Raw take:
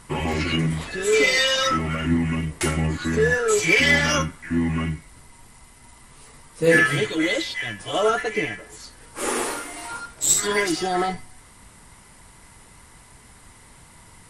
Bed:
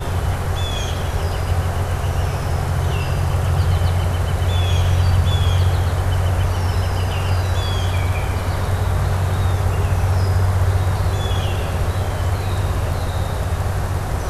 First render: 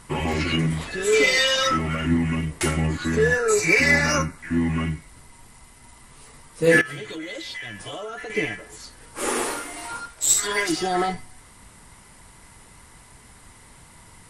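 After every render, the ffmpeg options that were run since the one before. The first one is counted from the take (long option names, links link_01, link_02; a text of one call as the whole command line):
ffmpeg -i in.wav -filter_complex "[0:a]asettb=1/sr,asplit=3[link_01][link_02][link_03];[link_01]atrim=end=3.374[link_04];[link_02]atrim=start=3.37:end=4.38,asetpts=PTS-STARTPTS,afade=type=in:duration=0.004:curve=qsin,afade=type=out:start_time=1.006:duration=0.004:curve=qsin,asuperstop=centerf=3200:order=4:qfactor=3.1[link_05];[link_03]atrim=start=4.376[link_06];[link_04][link_05]acrossfade=duration=0.004:curve1=hsin:curve2=qsin[link_07];[link_07][link_06]acrossfade=duration=0.004:curve1=qsin:curve2=hsin,asettb=1/sr,asplit=3[link_08][link_09][link_10];[link_08]atrim=end=6.814[link_11];[link_09]atrim=start=6.81:end=8.3,asetpts=PTS-STARTPTS,afade=type=in:duration=0.004:curve=qsin,afade=type=out:start_time=1.486:duration=0.004:curve=qsin,acompressor=threshold=-30dB:ratio=12:attack=3.2:release=140:knee=1:detection=peak[link_12];[link_10]atrim=start=8.296[link_13];[link_11][link_12]acrossfade=duration=0.004:curve1=hsin:curve2=qsin[link_14];[link_14][link_13]acrossfade=duration=0.004:curve1=qsin:curve2=hsin,asettb=1/sr,asplit=3[link_15][link_16][link_17];[link_15]atrim=end=10.084[link_18];[link_16]atrim=start=10.08:end=10.69,asetpts=PTS-STARTPTS,afade=type=in:duration=0.004:curve=qsin,afade=type=out:start_time=0.606:duration=0.004:curve=qsin,equalizer=frequency=200:width=0.51:gain=-9[link_19];[link_17]atrim=start=10.686[link_20];[link_18][link_19]acrossfade=duration=0.004:curve1=hsin:curve2=qsin[link_21];[link_21][link_20]acrossfade=duration=0.004:curve1=qsin:curve2=hsin" out.wav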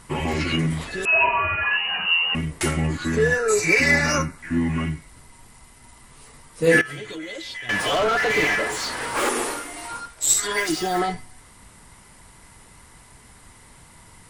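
ffmpeg -i in.wav -filter_complex "[0:a]asettb=1/sr,asplit=3[link_01][link_02][link_03];[link_01]atrim=end=1.054[link_04];[link_02]atrim=start=1.05:end=2.35,asetpts=PTS-STARTPTS,afade=type=in:duration=0.004:curve=qsin,afade=type=out:start_time=1.296:duration=0.004:curve=qsin,lowpass=frequency=2600:width_type=q:width=0.5098,lowpass=frequency=2600:width_type=q:width=0.6013,lowpass=frequency=2600:width_type=q:width=0.9,lowpass=frequency=2600:width_type=q:width=2.563,afreqshift=-3000[link_05];[link_03]atrim=start=2.346[link_06];[link_04][link_05]acrossfade=duration=0.004:curve1=hsin:curve2=qsin[link_07];[link_07][link_06]acrossfade=duration=0.004:curve1=qsin:curve2=hsin,asettb=1/sr,asplit=3[link_08][link_09][link_10];[link_08]atrim=end=7.694[link_11];[link_09]atrim=start=7.69:end=9.29,asetpts=PTS-STARTPTS,afade=type=in:duration=0.004:curve=qsin,afade=type=out:start_time=1.596:duration=0.004:curve=qsin,asplit=2[link_12][link_13];[link_13]highpass=frequency=720:poles=1,volume=33dB,asoftclip=type=tanh:threshold=-12dB[link_14];[link_12][link_14]amix=inputs=2:normalize=0,lowpass=frequency=2100:poles=1,volume=-6dB[link_15];[link_10]atrim=start=9.286[link_16];[link_11][link_15]acrossfade=duration=0.004:curve1=hsin:curve2=qsin[link_17];[link_17][link_16]acrossfade=duration=0.004:curve1=qsin:curve2=hsin,asplit=3[link_18][link_19][link_20];[link_18]afade=type=out:start_time=10.56:duration=0.02[link_21];[link_19]acrusher=bits=7:dc=4:mix=0:aa=0.000001,afade=type=in:start_time=10.56:duration=0.02,afade=type=out:start_time=10.98:duration=0.02[link_22];[link_20]afade=type=in:start_time=10.98:duration=0.02[link_23];[link_21][link_22][link_23]amix=inputs=3:normalize=0" out.wav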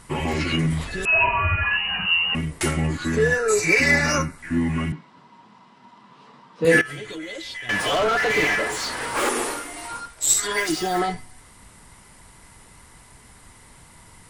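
ffmpeg -i in.wav -filter_complex "[0:a]asettb=1/sr,asplit=3[link_01][link_02][link_03];[link_01]atrim=end=0.504[link_04];[link_02]atrim=start=0.5:end=2.33,asetpts=PTS-STARTPTS,afade=type=in:duration=0.004:curve=qsin,afade=type=out:start_time=1.826:duration=0.004:curve=qsin,asubboost=boost=11:cutoff=190[link_05];[link_03]atrim=start=2.326[link_06];[link_04][link_05]acrossfade=duration=0.004:curve1=hsin:curve2=qsin[link_07];[link_07][link_06]acrossfade=duration=0.004:curve1=qsin:curve2=hsin,asettb=1/sr,asplit=3[link_08][link_09][link_10];[link_08]atrim=end=4.924[link_11];[link_09]atrim=start=4.92:end=6.65,asetpts=PTS-STARTPTS,afade=type=in:duration=0.004:curve=qsin,afade=type=out:start_time=1.726:duration=0.004:curve=qsin,highpass=frequency=160:width=0.5412,highpass=frequency=160:width=1.3066,equalizer=frequency=200:width_type=q:width=4:gain=8,equalizer=frequency=1000:width_type=q:width=4:gain=8,equalizer=frequency=2100:width_type=q:width=4:gain=-7,equalizer=frequency=4400:width_type=q:width=4:gain=-3,lowpass=frequency=4400:width=0.5412,lowpass=frequency=4400:width=1.3066[link_12];[link_10]atrim=start=6.646[link_13];[link_11][link_12]acrossfade=duration=0.004:curve1=hsin:curve2=qsin[link_14];[link_14][link_13]acrossfade=duration=0.004:curve1=qsin:curve2=hsin" out.wav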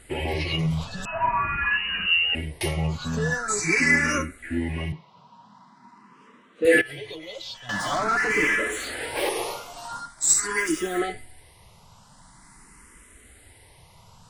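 ffmpeg -i in.wav -filter_complex "[0:a]asplit=2[link_01][link_02];[link_02]afreqshift=0.45[link_03];[link_01][link_03]amix=inputs=2:normalize=1" out.wav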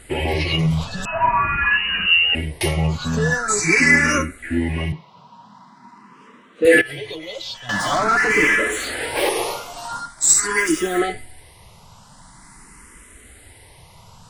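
ffmpeg -i in.wav -af "volume=6dB,alimiter=limit=-3dB:level=0:latency=1" out.wav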